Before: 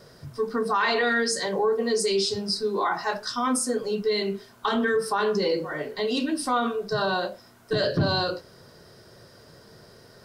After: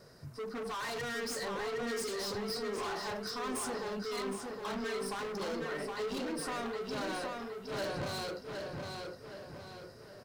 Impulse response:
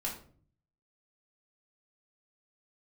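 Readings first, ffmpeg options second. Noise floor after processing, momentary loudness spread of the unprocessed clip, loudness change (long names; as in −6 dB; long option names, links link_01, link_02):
−52 dBFS, 7 LU, −12.5 dB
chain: -filter_complex "[0:a]equalizer=frequency=3300:width=5.5:gain=-8.5,asoftclip=type=hard:threshold=-30.5dB,asplit=2[link_01][link_02];[link_02]adelay=765,lowpass=frequency=4900:poles=1,volume=-3.5dB,asplit=2[link_03][link_04];[link_04]adelay=765,lowpass=frequency=4900:poles=1,volume=0.47,asplit=2[link_05][link_06];[link_06]adelay=765,lowpass=frequency=4900:poles=1,volume=0.47,asplit=2[link_07][link_08];[link_08]adelay=765,lowpass=frequency=4900:poles=1,volume=0.47,asplit=2[link_09][link_10];[link_10]adelay=765,lowpass=frequency=4900:poles=1,volume=0.47,asplit=2[link_11][link_12];[link_12]adelay=765,lowpass=frequency=4900:poles=1,volume=0.47[link_13];[link_01][link_03][link_05][link_07][link_09][link_11][link_13]amix=inputs=7:normalize=0,volume=-6.5dB"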